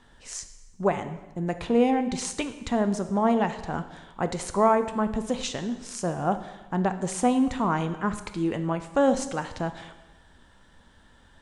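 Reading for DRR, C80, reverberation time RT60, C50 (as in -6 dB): 9.0 dB, 13.5 dB, 1.1 s, 11.5 dB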